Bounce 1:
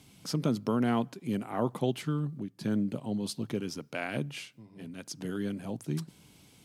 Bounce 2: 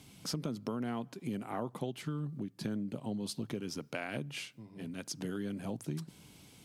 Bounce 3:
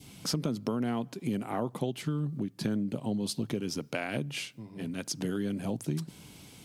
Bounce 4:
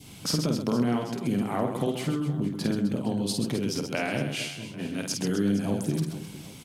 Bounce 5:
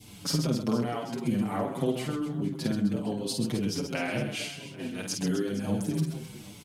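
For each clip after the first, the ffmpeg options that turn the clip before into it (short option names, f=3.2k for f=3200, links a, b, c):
-af "acompressor=threshold=-35dB:ratio=6,volume=1dB"
-af "adynamicequalizer=threshold=0.00178:dfrequency=1300:dqfactor=1:tfrequency=1300:tqfactor=1:attack=5:release=100:ratio=0.375:range=2:mode=cutabove:tftype=bell,volume=6dB"
-af "aecho=1:1:50|130|258|462.8|790.5:0.631|0.398|0.251|0.158|0.1,volume=3dB"
-filter_complex "[0:a]asplit=2[a][b];[b]adelay=6.2,afreqshift=-1.4[c];[a][c]amix=inputs=2:normalize=1,volume=1dB"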